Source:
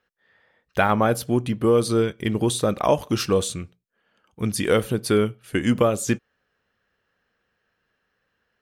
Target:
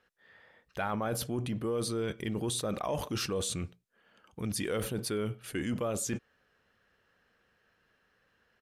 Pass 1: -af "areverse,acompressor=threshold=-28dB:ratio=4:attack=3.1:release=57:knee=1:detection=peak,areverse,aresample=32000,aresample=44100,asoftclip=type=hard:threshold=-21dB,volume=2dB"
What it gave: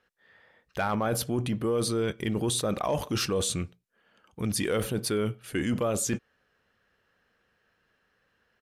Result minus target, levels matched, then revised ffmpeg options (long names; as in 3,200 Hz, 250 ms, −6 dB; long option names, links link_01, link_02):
downward compressor: peak gain reduction −5.5 dB
-af "areverse,acompressor=threshold=-35dB:ratio=4:attack=3.1:release=57:knee=1:detection=peak,areverse,aresample=32000,aresample=44100,asoftclip=type=hard:threshold=-21dB,volume=2dB"